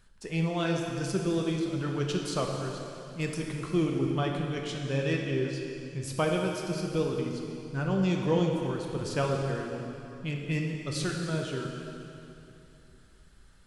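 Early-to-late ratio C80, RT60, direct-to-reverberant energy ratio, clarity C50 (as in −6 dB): 3.5 dB, 2.9 s, 0.5 dB, 2.0 dB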